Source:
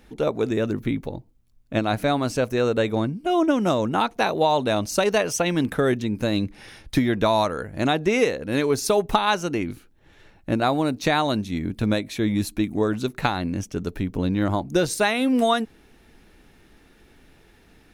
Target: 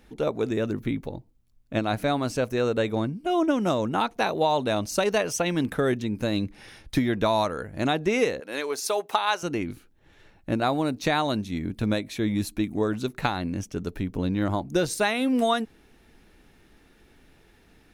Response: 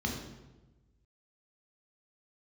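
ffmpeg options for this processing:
-filter_complex "[0:a]asettb=1/sr,asplit=3[s0][s1][s2];[s0]atrim=end=8.404[s3];[s1]atrim=start=8.4:end=9.43,asetpts=PTS-STARTPTS,afade=t=in:d=0.004:c=qsin,afade=t=out:st=1.026:d=0.004:c=qsin,highpass=520[s4];[s2]atrim=start=9.426[s5];[s3][s4]acrossfade=d=0.004:c1=hsin:c2=qsin[s6];[s6][s5]acrossfade=d=0.004:c1=qsin:c2=hsin,volume=0.708"

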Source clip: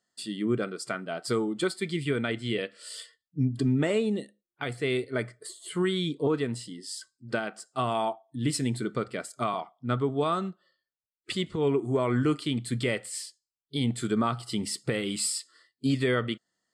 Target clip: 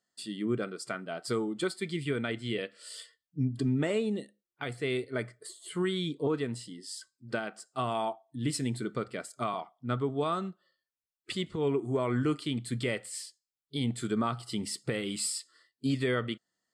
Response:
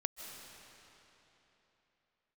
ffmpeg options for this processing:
-af "volume=0.668"

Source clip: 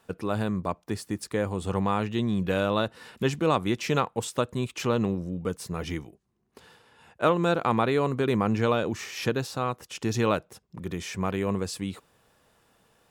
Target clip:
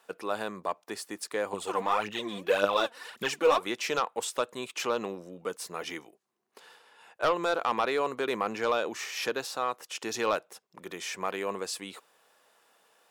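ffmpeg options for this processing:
-filter_complex "[0:a]highpass=500,aeval=exprs='0.355*sin(PI/2*2*val(0)/0.355)':c=same,asettb=1/sr,asplit=3[s0][s1][s2];[s0]atrim=end=1.534[s3];[s1]atrim=start=1.53:end=3.66,asetpts=PTS-STARTPTS,afade=t=in:d=0.004:c=qsin,afade=t=out:st=2.126:d=0.004:c=qsin,aphaser=in_gain=1:out_gain=1:delay=4.4:decay=0.66:speed=1.8:type=triangular[s4];[s2]atrim=start=3.656[s5];[s3][s4]acrossfade=d=0.004:c1=hsin:c2=qsin[s6];[s6][s5]acrossfade=d=0.004:c1=qsin:c2=hsin,volume=0.355"

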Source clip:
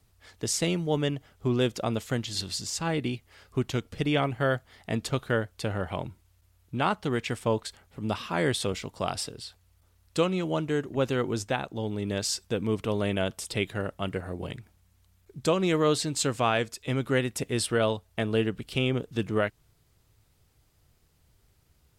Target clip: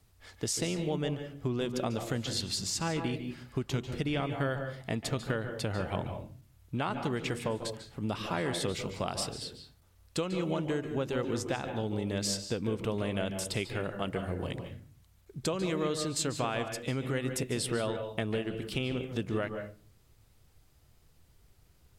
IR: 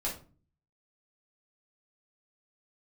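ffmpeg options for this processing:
-filter_complex "[0:a]acompressor=threshold=0.0355:ratio=6,asplit=2[s0][s1];[1:a]atrim=start_sample=2205,highshelf=f=9600:g=-11.5,adelay=141[s2];[s1][s2]afir=irnorm=-1:irlink=0,volume=0.299[s3];[s0][s3]amix=inputs=2:normalize=0"

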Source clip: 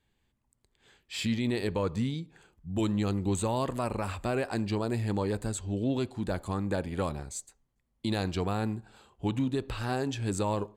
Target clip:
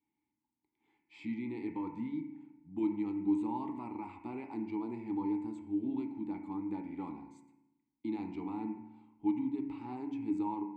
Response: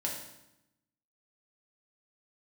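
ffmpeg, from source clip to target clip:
-filter_complex "[0:a]asplit=3[s0][s1][s2];[s0]bandpass=f=300:t=q:w=8,volume=1[s3];[s1]bandpass=f=870:t=q:w=8,volume=0.501[s4];[s2]bandpass=f=2240:t=q:w=8,volume=0.355[s5];[s3][s4][s5]amix=inputs=3:normalize=0,asplit=2[s6][s7];[s7]highshelf=f=2700:t=q:w=3:g=-9[s8];[1:a]atrim=start_sample=2205[s9];[s8][s9]afir=irnorm=-1:irlink=0,volume=0.708[s10];[s6][s10]amix=inputs=2:normalize=0,volume=0.75"

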